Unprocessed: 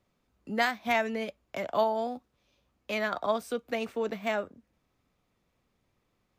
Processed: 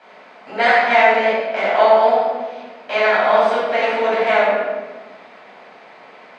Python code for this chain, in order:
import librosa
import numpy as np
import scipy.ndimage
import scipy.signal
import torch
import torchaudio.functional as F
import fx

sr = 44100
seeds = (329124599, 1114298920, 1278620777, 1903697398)

y = fx.bin_compress(x, sr, power=0.6)
y = fx.bandpass_edges(y, sr, low_hz=480.0, high_hz=5400.0)
y = fx.high_shelf(y, sr, hz=4000.0, db=-9.0)
y = fx.room_shoebox(y, sr, seeds[0], volume_m3=1000.0, walls='mixed', distance_m=8.0)
y = F.gain(torch.from_numpy(y), 1.0).numpy()